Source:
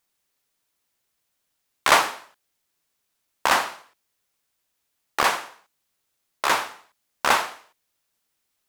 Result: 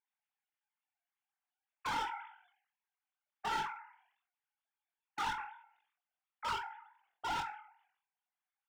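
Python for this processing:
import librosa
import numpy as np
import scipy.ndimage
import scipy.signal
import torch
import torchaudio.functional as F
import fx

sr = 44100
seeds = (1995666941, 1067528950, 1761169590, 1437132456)

y = fx.sine_speech(x, sr)
y = fx.lowpass(y, sr, hz=fx.steps((0.0, 1800.0), (5.38, 1100.0)), slope=6)
y = fx.low_shelf_res(y, sr, hz=520.0, db=8.0, q=1.5)
y = fx.level_steps(y, sr, step_db=14)
y = np.clip(y, -10.0 ** (-33.5 / 20.0), 10.0 ** (-33.5 / 20.0))
y = fx.chorus_voices(y, sr, voices=6, hz=1.2, base_ms=22, depth_ms=3.0, mix_pct=40)
y = fx.room_flutter(y, sr, wall_m=7.9, rt60_s=0.21)
y = fx.sustainer(y, sr, db_per_s=91.0)
y = F.gain(torch.from_numpy(y), 2.5).numpy()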